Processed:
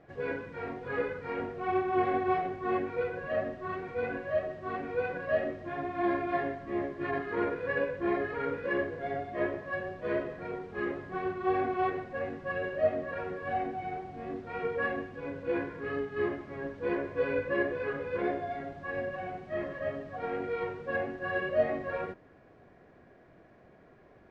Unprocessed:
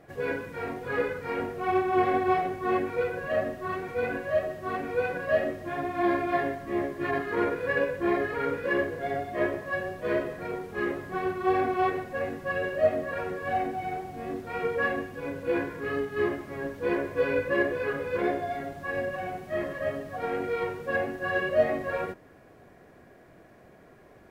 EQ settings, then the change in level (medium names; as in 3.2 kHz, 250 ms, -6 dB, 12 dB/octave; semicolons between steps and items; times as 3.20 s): distance through air 140 m; -3.5 dB